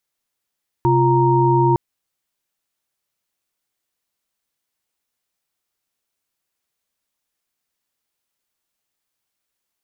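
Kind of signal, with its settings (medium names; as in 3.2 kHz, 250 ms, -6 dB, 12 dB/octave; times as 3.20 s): chord C3/F4/A#5 sine, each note -16.5 dBFS 0.91 s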